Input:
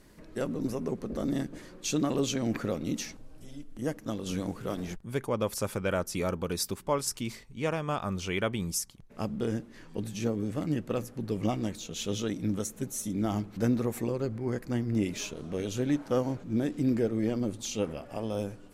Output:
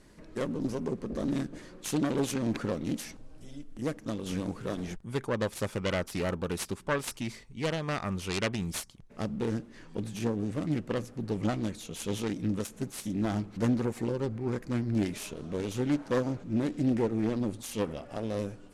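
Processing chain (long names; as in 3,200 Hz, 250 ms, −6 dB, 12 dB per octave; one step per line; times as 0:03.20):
phase distortion by the signal itself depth 0.33 ms
low-pass filter 11,000 Hz 24 dB per octave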